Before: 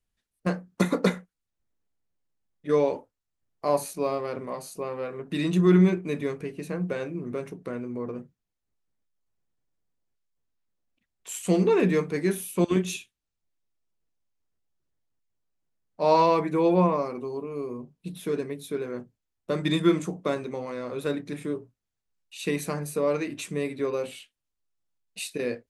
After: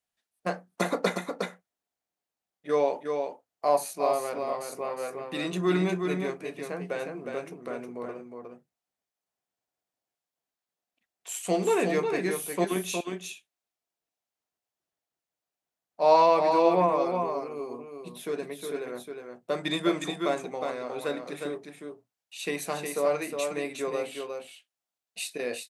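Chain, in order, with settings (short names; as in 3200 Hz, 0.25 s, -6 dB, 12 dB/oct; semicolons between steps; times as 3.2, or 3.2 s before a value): HPF 550 Hz 6 dB/oct; bell 710 Hz +8 dB 0.43 oct; on a send: echo 0.361 s -5.5 dB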